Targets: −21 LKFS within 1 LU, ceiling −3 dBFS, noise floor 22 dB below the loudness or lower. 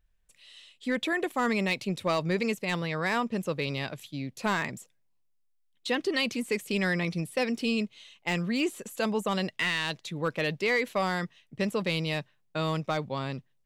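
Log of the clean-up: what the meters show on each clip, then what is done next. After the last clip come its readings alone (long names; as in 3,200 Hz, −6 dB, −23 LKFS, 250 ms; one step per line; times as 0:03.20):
share of clipped samples 0.2%; peaks flattened at −19.0 dBFS; integrated loudness −30.0 LKFS; sample peak −19.0 dBFS; target loudness −21.0 LKFS
→ clipped peaks rebuilt −19 dBFS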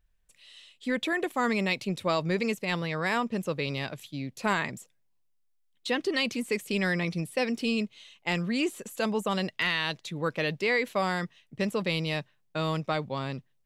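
share of clipped samples 0.0%; integrated loudness −30.0 LKFS; sample peak −12.5 dBFS; target loudness −21.0 LKFS
→ level +9 dB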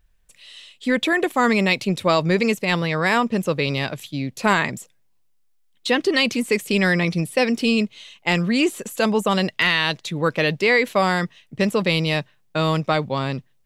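integrated loudness −21.0 LKFS; sample peak −3.5 dBFS; background noise floor −61 dBFS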